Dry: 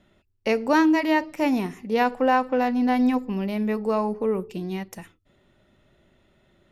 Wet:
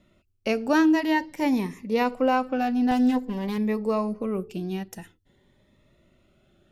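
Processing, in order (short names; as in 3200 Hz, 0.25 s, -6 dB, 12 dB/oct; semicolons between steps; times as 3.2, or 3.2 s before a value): 2.91–3.58 minimum comb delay 4.1 ms; cascading phaser rising 0.5 Hz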